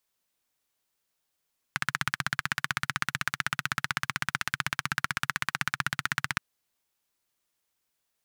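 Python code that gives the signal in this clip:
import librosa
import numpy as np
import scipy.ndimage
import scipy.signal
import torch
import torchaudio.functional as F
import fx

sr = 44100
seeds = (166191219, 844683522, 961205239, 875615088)

y = fx.engine_single(sr, seeds[0], length_s=4.62, rpm=1900, resonances_hz=(140.0, 1500.0))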